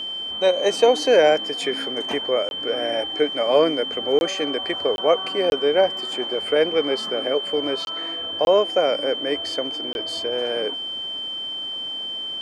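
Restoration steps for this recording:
notch filter 3,100 Hz, Q 30
repair the gap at 0:02.49/0:04.19/0:04.96/0:05.50/0:07.85/0:08.45/0:09.93, 21 ms

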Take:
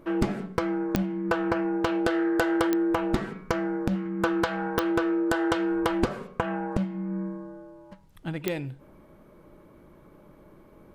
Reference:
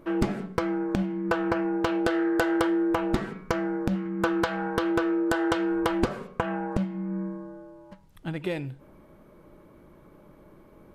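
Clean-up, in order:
click removal

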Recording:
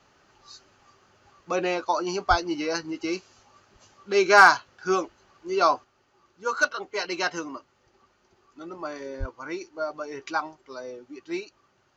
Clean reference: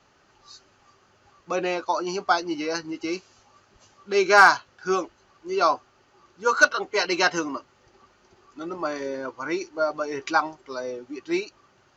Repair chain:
0:02.29–0:02.41: high-pass filter 140 Hz 24 dB per octave
0:05.84: level correction +6 dB
0:09.19–0:09.31: high-pass filter 140 Hz 24 dB per octave

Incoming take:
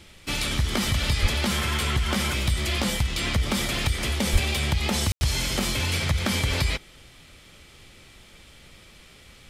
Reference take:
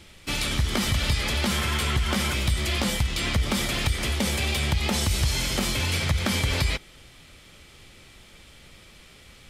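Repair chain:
high-pass at the plosives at 0:01.21/0:04.32/0:05.10
ambience match 0:05.12–0:05.21

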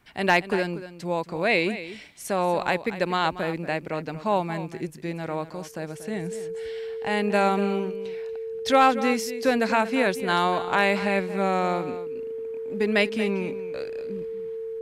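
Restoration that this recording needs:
clipped peaks rebuilt −8.5 dBFS
notch filter 450 Hz, Q 30
echo removal 235 ms −13.5 dB

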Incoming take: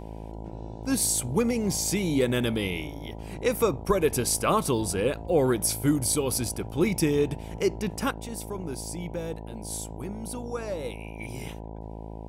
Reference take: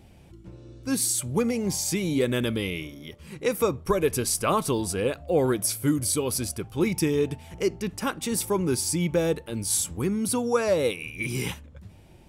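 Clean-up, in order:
hum removal 54.3 Hz, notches 18
level correction +10.5 dB, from 0:08.11

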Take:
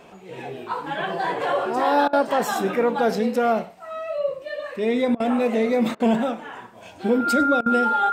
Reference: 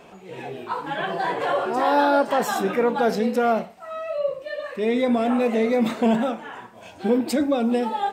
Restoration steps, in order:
notch filter 1,400 Hz, Q 30
repair the gap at 0:02.08/0:05.15/0:05.95/0:07.61, 49 ms
echo removal 100 ms −22 dB

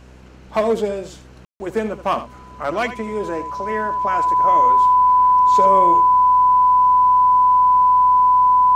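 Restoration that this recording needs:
hum removal 63.2 Hz, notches 8
notch filter 1,000 Hz, Q 30
ambience match 0:01.45–0:01.60
echo removal 78 ms −12.5 dB

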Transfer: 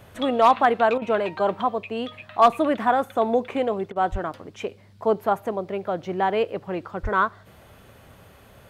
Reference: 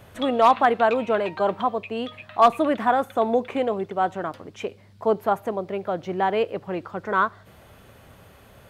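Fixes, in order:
0:04.11–0:04.23: high-pass filter 140 Hz 24 dB per octave
0:07.02–0:07.14: high-pass filter 140 Hz 24 dB per octave
repair the gap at 0:00.98/0:03.92, 36 ms

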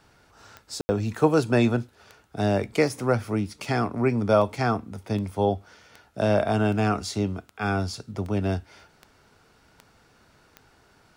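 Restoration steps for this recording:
click removal
ambience match 0:00.81–0:00.89

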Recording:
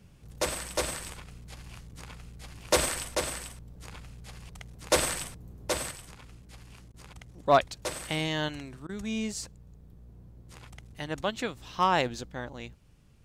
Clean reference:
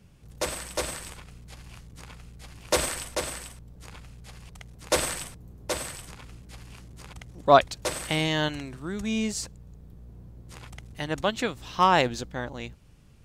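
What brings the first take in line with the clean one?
clipped peaks rebuilt −11.5 dBFS
repair the gap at 0:06.92/0:08.87, 20 ms
level correction +4.5 dB, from 0:05.91

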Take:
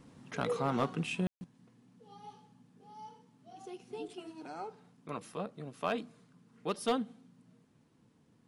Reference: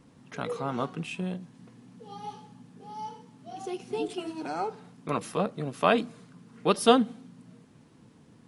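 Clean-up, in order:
clipped peaks rebuilt −21.5 dBFS
ambience match 0:01.27–0:01.41
level correction +11 dB, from 0:01.44

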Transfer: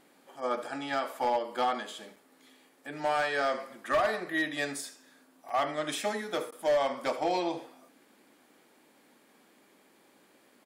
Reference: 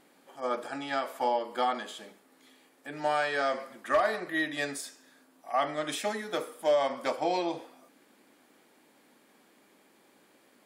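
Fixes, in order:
clipped peaks rebuilt −21.5 dBFS
repair the gap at 0:02.16/0:05.49, 4.4 ms
repair the gap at 0:06.51, 11 ms
echo removal 78 ms −16 dB

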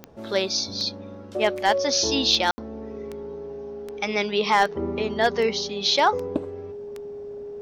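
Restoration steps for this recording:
clipped peaks rebuilt −9.5 dBFS
click removal
notch filter 410 Hz, Q 30
ambience match 0:02.51–0:02.58

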